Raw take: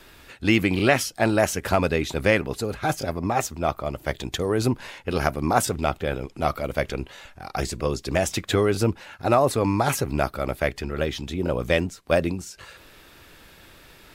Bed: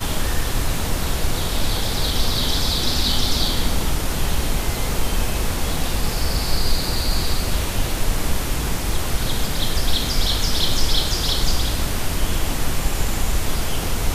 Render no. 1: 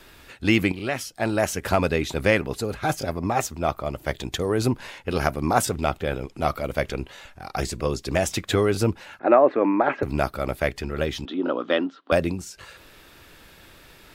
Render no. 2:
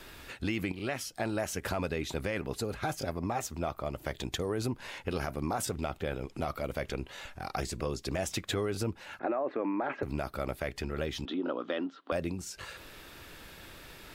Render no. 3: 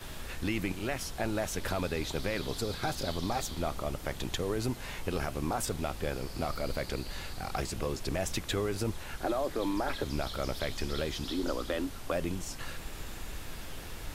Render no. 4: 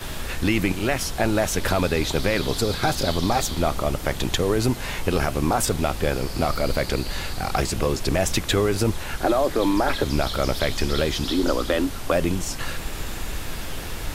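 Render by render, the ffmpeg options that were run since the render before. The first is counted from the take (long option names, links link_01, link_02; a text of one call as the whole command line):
ffmpeg -i in.wav -filter_complex "[0:a]asettb=1/sr,asplit=3[link_01][link_02][link_03];[link_01]atrim=end=9.194[link_04];[link_02]atrim=start=9.19:end=10.03,asetpts=PTS-STARTPTS,afade=type=in:duration=0.004:curve=qsin,afade=type=out:start_time=0.836:duration=0.004:curve=qsin,highpass=frequency=230:width=0.5412,highpass=frequency=230:width=1.3066,equalizer=frequency=320:width_type=q:width=4:gain=6,equalizer=frequency=590:width_type=q:width=4:gain=5,equalizer=frequency=1700:width_type=q:width=4:gain=5,lowpass=frequency=2400:width=0.5412,lowpass=frequency=2400:width=1.3066[link_05];[link_03]atrim=start=10.026[link_06];[link_04][link_05]acrossfade=duration=0.004:curve1=hsin:curve2=qsin[link_07];[link_07][link_06]acrossfade=duration=0.004:curve1=qsin:curve2=hsin,asettb=1/sr,asplit=3[link_08][link_09][link_10];[link_08]atrim=end=11.254[link_11];[link_09]atrim=start=11.25:end=12.12,asetpts=PTS-STARTPTS,afade=type=in:duration=0.004:curve=qsin,afade=type=out:start_time=0.866:duration=0.004:curve=qsin,highpass=frequency=260:width=0.5412,highpass=frequency=260:width=1.3066,equalizer=frequency=280:width_type=q:width=4:gain=9,equalizer=frequency=440:width_type=q:width=4:gain=-3,equalizer=frequency=1300:width_type=q:width=4:gain=9,equalizer=frequency=2300:width_type=q:width=4:gain=-10,equalizer=frequency=3300:width_type=q:width=4:gain=5,lowpass=frequency=3600:width=0.5412,lowpass=frequency=3600:width=1.3066[link_12];[link_10]atrim=start=12.116[link_13];[link_11][link_12]acrossfade=duration=0.004:curve1=hsin:curve2=qsin[link_14];[link_14][link_13]acrossfade=duration=0.004:curve1=qsin:curve2=hsin,asplit=2[link_15][link_16];[link_15]atrim=end=0.72,asetpts=PTS-STARTPTS,afade=type=out:start_time=0.716:duration=0.004:curve=hsin:silence=0.237137[link_17];[link_16]atrim=start=0.72,asetpts=PTS-STARTPTS,afade=type=in:duration=0.98:silence=0.237137[link_18];[link_17][link_18]concat=n=2:v=0:a=1" out.wav
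ffmpeg -i in.wav -af "alimiter=limit=-13dB:level=0:latency=1:release=24,acompressor=threshold=-34dB:ratio=2.5" out.wav
ffmpeg -i in.wav -i bed.wav -filter_complex "[1:a]volume=-21dB[link_01];[0:a][link_01]amix=inputs=2:normalize=0" out.wav
ffmpeg -i in.wav -af "volume=11dB" out.wav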